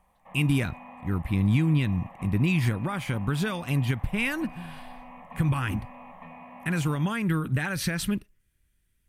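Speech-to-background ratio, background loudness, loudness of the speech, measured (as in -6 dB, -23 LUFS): 18.5 dB, -46.0 LUFS, -27.5 LUFS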